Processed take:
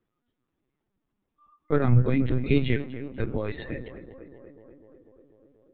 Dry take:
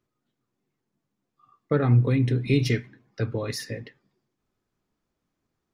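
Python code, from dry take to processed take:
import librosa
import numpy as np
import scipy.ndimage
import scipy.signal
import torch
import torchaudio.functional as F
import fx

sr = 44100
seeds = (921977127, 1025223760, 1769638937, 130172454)

y = fx.echo_tape(x, sr, ms=245, feedback_pct=82, wet_db=-11.5, lp_hz=1600.0, drive_db=4.0, wow_cents=20)
y = fx.lpc_vocoder(y, sr, seeds[0], excitation='pitch_kept', order=16)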